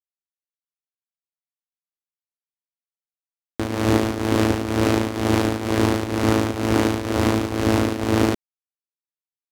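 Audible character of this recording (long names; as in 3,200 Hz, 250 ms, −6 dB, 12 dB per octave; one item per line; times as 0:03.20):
a quantiser's noise floor 10 bits, dither none
tremolo triangle 2.1 Hz, depth 75%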